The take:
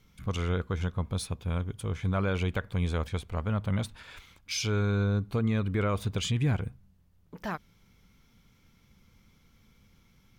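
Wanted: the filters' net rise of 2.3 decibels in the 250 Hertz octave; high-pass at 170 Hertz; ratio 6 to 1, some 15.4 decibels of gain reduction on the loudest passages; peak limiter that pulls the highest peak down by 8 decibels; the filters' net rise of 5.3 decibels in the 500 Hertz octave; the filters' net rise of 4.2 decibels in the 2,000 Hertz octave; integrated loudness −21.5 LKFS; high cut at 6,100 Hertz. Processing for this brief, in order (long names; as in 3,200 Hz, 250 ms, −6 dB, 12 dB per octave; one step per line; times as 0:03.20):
high-pass filter 170 Hz
low-pass filter 6,100 Hz
parametric band 250 Hz +4 dB
parametric band 500 Hz +5 dB
parametric band 2,000 Hz +5.5 dB
downward compressor 6 to 1, threshold −39 dBFS
level +24 dB
brickwall limiter −8 dBFS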